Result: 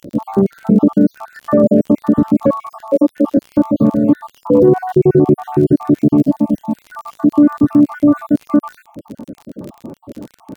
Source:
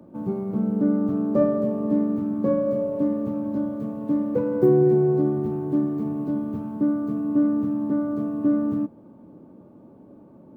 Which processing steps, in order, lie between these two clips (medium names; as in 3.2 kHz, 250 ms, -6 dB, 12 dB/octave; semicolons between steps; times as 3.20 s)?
random holes in the spectrogram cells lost 65%; 2.64–3.37 s: high-pass 240 Hz 24 dB/octave; 7.54–8.25 s: comb 7.4 ms, depth 51%; crackle 33 per s -44 dBFS; 6.23–6.77 s: static phaser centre 380 Hz, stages 6; loudness maximiser +20 dB; trim -1 dB